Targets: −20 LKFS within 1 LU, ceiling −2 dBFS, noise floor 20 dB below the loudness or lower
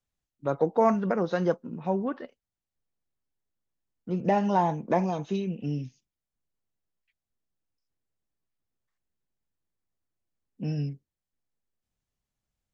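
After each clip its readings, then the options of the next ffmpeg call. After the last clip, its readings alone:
integrated loudness −28.0 LKFS; sample peak −10.5 dBFS; target loudness −20.0 LKFS
→ -af "volume=8dB"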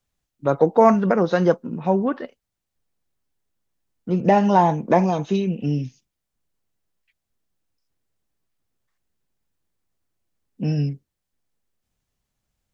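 integrated loudness −20.0 LKFS; sample peak −2.5 dBFS; background noise floor −81 dBFS

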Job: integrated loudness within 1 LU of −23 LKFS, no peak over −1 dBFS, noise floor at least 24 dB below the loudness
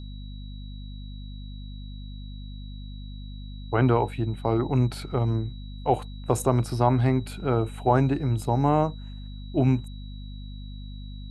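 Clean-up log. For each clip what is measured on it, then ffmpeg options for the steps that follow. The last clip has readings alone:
mains hum 50 Hz; hum harmonics up to 250 Hz; level of the hum −35 dBFS; interfering tone 3,900 Hz; level of the tone −51 dBFS; integrated loudness −25.0 LKFS; sample peak −6.5 dBFS; target loudness −23.0 LKFS
→ -af "bandreject=frequency=50:width_type=h:width=4,bandreject=frequency=100:width_type=h:width=4,bandreject=frequency=150:width_type=h:width=4,bandreject=frequency=200:width_type=h:width=4,bandreject=frequency=250:width_type=h:width=4"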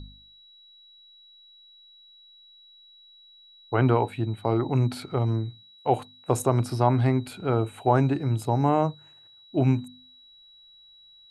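mains hum none found; interfering tone 3,900 Hz; level of the tone −51 dBFS
→ -af "bandreject=frequency=3900:width=30"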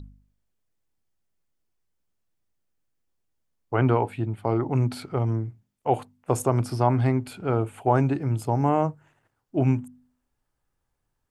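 interfering tone none found; integrated loudness −25.5 LKFS; sample peak −6.5 dBFS; target loudness −23.0 LKFS
→ -af "volume=2.5dB"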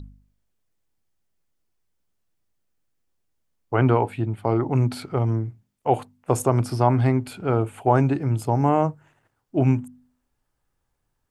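integrated loudness −23.0 LKFS; sample peak −4.0 dBFS; background noise floor −76 dBFS

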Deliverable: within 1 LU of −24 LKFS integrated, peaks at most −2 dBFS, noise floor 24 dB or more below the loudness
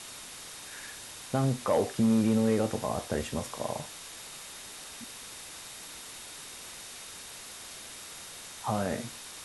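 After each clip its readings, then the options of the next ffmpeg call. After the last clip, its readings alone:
interfering tone 3,700 Hz; level of the tone −55 dBFS; background noise floor −45 dBFS; target noise floor −58 dBFS; integrated loudness −33.5 LKFS; sample peak −15.0 dBFS; target loudness −24.0 LKFS
→ -af "bandreject=frequency=3700:width=30"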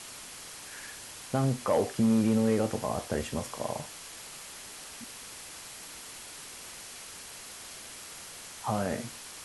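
interfering tone none found; background noise floor −46 dBFS; target noise floor −58 dBFS
→ -af "afftdn=noise_reduction=12:noise_floor=-46"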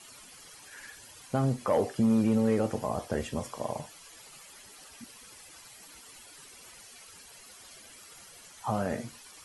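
background noise floor −52 dBFS; target noise floor −54 dBFS
→ -af "afftdn=noise_reduction=6:noise_floor=-52"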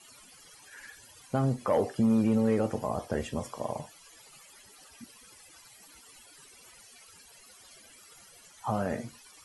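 background noise floor −55 dBFS; integrated loudness −30.0 LKFS; sample peak −16.0 dBFS; target loudness −24.0 LKFS
→ -af "volume=6dB"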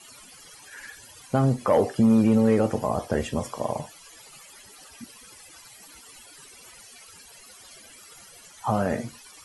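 integrated loudness −24.0 LKFS; sample peak −10.0 dBFS; background noise floor −49 dBFS

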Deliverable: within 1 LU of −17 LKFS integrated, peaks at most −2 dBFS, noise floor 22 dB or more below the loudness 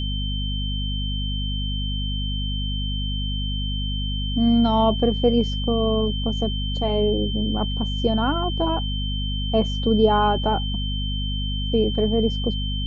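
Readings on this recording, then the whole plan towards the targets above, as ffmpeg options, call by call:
mains hum 50 Hz; hum harmonics up to 250 Hz; level of the hum −23 dBFS; interfering tone 3,100 Hz; level of the tone −30 dBFS; integrated loudness −23.0 LKFS; sample peak −6.0 dBFS; target loudness −17.0 LKFS
→ -af "bandreject=frequency=50:width_type=h:width=6,bandreject=frequency=100:width_type=h:width=6,bandreject=frequency=150:width_type=h:width=6,bandreject=frequency=200:width_type=h:width=6,bandreject=frequency=250:width_type=h:width=6"
-af "bandreject=frequency=3100:width=30"
-af "volume=6dB,alimiter=limit=-2dB:level=0:latency=1"

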